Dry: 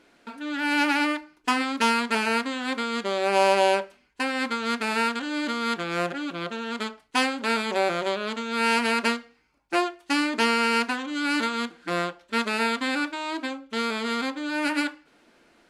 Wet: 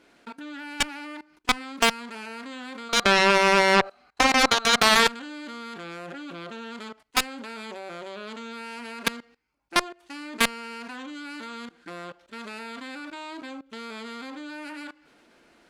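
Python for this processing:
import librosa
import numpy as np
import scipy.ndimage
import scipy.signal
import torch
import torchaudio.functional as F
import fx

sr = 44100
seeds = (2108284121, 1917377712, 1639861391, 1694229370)

y = fx.small_body(x, sr, hz=(740.0, 1200.0, 4000.0), ring_ms=20, db=18, at=(2.89, 5.07))
y = fx.level_steps(y, sr, step_db=21)
y = fx.cheby_harmonics(y, sr, harmonics=(3, 7), levels_db=(-22, -13), full_scale_db=-8.0)
y = y * 10.0 ** (6.0 / 20.0)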